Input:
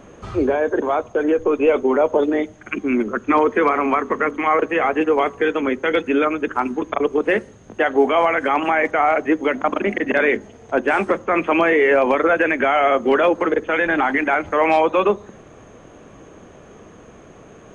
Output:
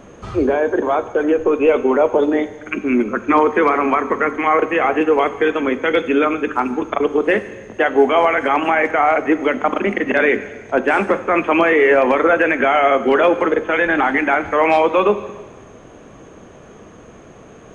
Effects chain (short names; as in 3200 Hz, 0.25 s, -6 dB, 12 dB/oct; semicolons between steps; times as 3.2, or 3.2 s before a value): plate-style reverb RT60 1.4 s, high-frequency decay 1×, DRR 12 dB; gain +2 dB